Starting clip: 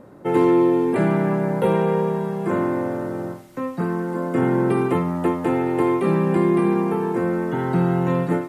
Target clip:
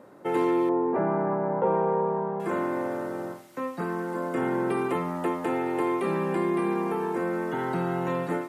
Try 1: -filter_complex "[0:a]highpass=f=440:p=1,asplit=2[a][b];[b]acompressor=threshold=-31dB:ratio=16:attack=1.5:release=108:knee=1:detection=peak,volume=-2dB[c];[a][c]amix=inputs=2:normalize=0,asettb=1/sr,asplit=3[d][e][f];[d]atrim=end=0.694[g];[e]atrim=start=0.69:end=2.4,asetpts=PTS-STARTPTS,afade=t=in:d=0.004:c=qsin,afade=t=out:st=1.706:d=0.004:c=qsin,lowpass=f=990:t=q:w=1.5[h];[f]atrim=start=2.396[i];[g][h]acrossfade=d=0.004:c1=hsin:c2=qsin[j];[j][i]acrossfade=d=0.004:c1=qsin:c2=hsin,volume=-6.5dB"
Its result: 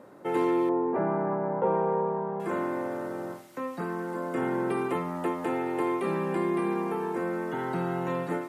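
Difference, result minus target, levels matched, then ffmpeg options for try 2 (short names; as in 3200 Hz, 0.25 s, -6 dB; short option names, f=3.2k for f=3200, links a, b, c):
compressor: peak gain reduction +8 dB
-filter_complex "[0:a]highpass=f=440:p=1,asplit=2[a][b];[b]acompressor=threshold=-22.5dB:ratio=16:attack=1.5:release=108:knee=1:detection=peak,volume=-2dB[c];[a][c]amix=inputs=2:normalize=0,asettb=1/sr,asplit=3[d][e][f];[d]atrim=end=0.694[g];[e]atrim=start=0.69:end=2.4,asetpts=PTS-STARTPTS,afade=t=in:d=0.004:c=qsin,afade=t=out:st=1.706:d=0.004:c=qsin,lowpass=f=990:t=q:w=1.5[h];[f]atrim=start=2.396[i];[g][h]acrossfade=d=0.004:c1=hsin:c2=qsin[j];[j][i]acrossfade=d=0.004:c1=qsin:c2=hsin,volume=-6.5dB"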